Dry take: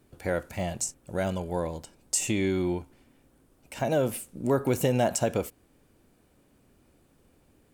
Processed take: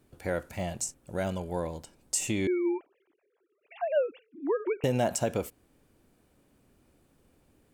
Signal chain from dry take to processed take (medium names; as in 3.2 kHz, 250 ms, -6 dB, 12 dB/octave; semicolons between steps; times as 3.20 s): 2.47–4.84 s: formants replaced by sine waves; trim -2.5 dB